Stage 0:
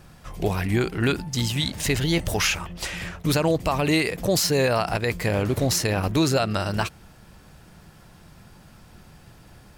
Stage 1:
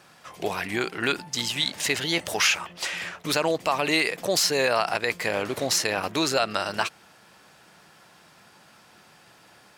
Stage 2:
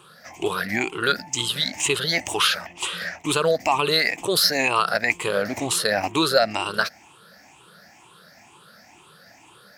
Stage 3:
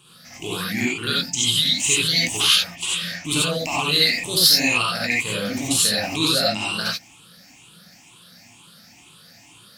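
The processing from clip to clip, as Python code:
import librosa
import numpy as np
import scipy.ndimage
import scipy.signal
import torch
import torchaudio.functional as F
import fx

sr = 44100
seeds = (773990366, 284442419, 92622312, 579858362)

y1 = fx.weighting(x, sr, curve='A')
y1 = F.gain(torch.from_numpy(y1), 1.0).numpy()
y2 = fx.spec_ripple(y1, sr, per_octave=0.66, drift_hz=2.1, depth_db=17)
y3 = fx.band_shelf(y2, sr, hz=810.0, db=-11.5, octaves=2.8)
y3 = fx.rev_gated(y3, sr, seeds[0], gate_ms=110, shape='rising', drr_db=-5.0)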